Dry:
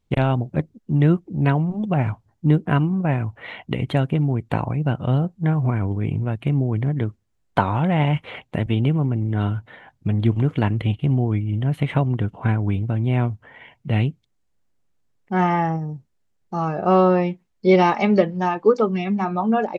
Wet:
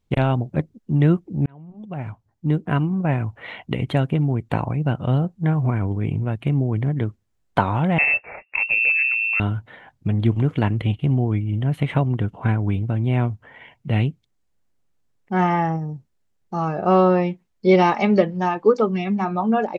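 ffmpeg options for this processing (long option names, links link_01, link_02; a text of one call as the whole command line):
ffmpeg -i in.wav -filter_complex "[0:a]asettb=1/sr,asplit=3[link_01][link_02][link_03];[link_01]atrim=end=7.984[link_04];[link_02]atrim=start=7.98:end=9.4,asetpts=PTS-STARTPTS,afade=type=in:duration=0.004:curve=qsin,afade=type=out:start_time=1.416:duration=0.004:curve=qsin,lowpass=frequency=2400:width_type=q:width=0.5098,lowpass=frequency=2400:width_type=q:width=0.6013,lowpass=frequency=2400:width_type=q:width=0.9,lowpass=frequency=2400:width_type=q:width=2.563,afreqshift=-2800[link_05];[link_03]atrim=start=9.396[link_06];[link_04][link_05]acrossfade=duration=0.004:curve1=hsin:curve2=qsin[link_07];[link_07][link_06]acrossfade=duration=0.004:curve1=qsin:curve2=hsin,asplit=2[link_08][link_09];[link_08]atrim=end=1.46,asetpts=PTS-STARTPTS,afade=type=out:start_time=1.456:duration=0.004:curve=hsin[link_10];[link_09]atrim=start=1.46,asetpts=PTS-STARTPTS,afade=type=in:duration=1.62[link_11];[link_10][link_11]concat=n=2:v=0:a=1" out.wav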